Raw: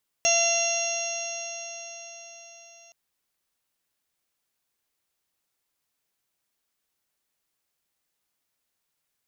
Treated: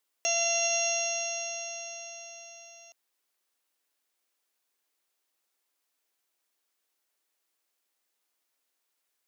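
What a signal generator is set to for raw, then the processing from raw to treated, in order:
stretched partials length 2.67 s, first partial 677 Hz, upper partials -18/-13/0/-11.5/-11.5/-18/0.5/1 dB, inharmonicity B 0.0014, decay 4.90 s, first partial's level -24 dB
high-pass 270 Hz 24 dB/octave; peak limiter -18.5 dBFS

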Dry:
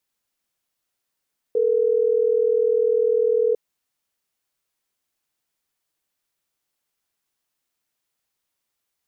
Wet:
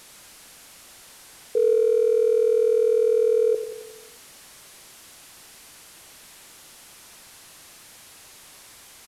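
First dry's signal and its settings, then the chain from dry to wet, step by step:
call progress tone ringback tone, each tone -19 dBFS
one-bit delta coder 64 kbps, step -41 dBFS; on a send: feedback delay 89 ms, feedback 59%, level -10 dB

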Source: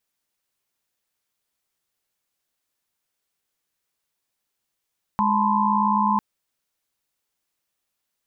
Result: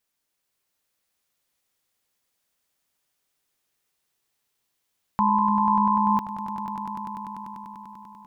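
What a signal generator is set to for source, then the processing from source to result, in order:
chord G#3/A5/B5/C6 sine, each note -23 dBFS 1.00 s
echo with a slow build-up 98 ms, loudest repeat 5, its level -9 dB

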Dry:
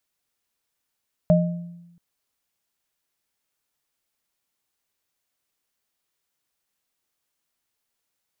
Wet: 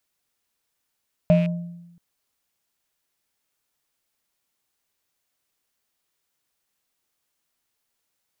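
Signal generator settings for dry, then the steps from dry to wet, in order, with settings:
sine partials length 0.68 s, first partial 172 Hz, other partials 617 Hz, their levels -1 dB, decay 1.01 s, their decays 0.50 s, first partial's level -13 dB
rattle on loud lows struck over -24 dBFS, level -29 dBFS; in parallel at -11 dB: saturation -25 dBFS

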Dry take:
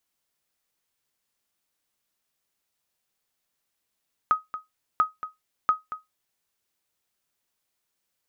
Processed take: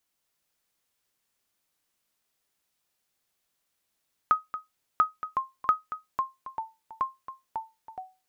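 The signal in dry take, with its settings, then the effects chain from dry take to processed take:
sonar ping 1.26 kHz, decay 0.17 s, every 0.69 s, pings 3, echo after 0.23 s, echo -13 dB -12 dBFS
ever faster or slower copies 243 ms, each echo -3 st, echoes 3, each echo -6 dB

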